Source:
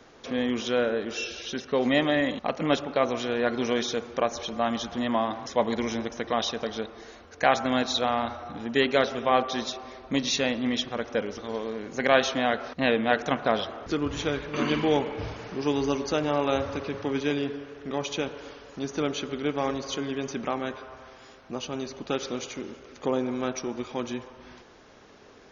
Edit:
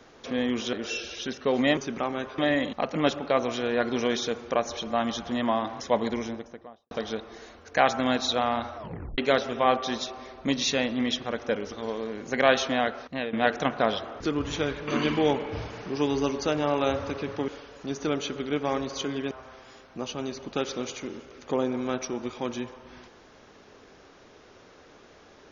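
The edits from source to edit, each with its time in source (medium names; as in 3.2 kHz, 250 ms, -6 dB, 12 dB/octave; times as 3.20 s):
0.73–1.00 s: delete
5.58–6.57 s: studio fade out
8.43 s: tape stop 0.41 s
12.43–12.99 s: fade out, to -12 dB
17.14–18.41 s: delete
20.24–20.85 s: move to 2.04 s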